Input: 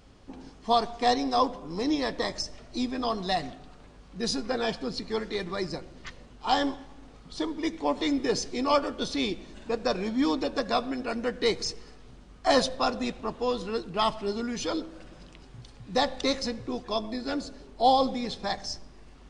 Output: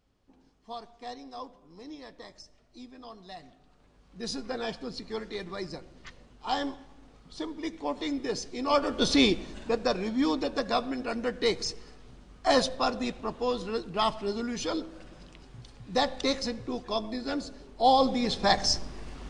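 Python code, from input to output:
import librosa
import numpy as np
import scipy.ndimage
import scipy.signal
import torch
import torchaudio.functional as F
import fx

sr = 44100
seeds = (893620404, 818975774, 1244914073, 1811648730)

y = fx.gain(x, sr, db=fx.line((3.33, -17.0), (4.35, -5.0), (8.58, -5.0), (9.13, 8.0), (9.98, -1.0), (17.84, -1.0), (18.65, 9.5)))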